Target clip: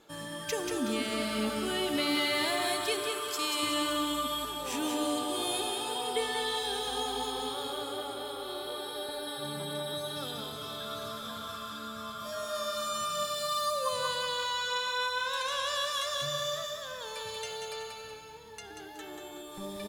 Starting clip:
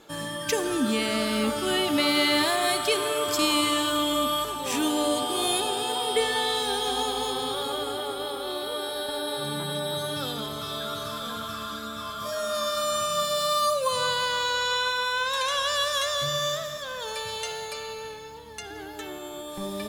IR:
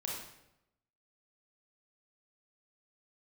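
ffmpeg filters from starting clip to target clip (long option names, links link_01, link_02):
-filter_complex "[0:a]asettb=1/sr,asplit=3[link_01][link_02][link_03];[link_01]atrim=end=3.094[link_04];[link_02]atrim=start=3.09:end=3.63,asetpts=PTS-STARTPTS,afade=type=in:duration=0.004:curve=qsin,afade=type=out:start_time=0.536:duration=0.004:curve=qsin,lowshelf=frequency=380:gain=-11.5[link_05];[link_03]atrim=start=3.626[link_06];[link_04][link_05]acrossfade=duration=0.004:curve1=hsin:curve2=qsin[link_07];[link_07][link_06]acrossfade=duration=0.004:curve1=qsin:curve2=hsin,aecho=1:1:186|372|558|744|930:0.562|0.214|0.0812|0.0309|0.0117,volume=-7.5dB"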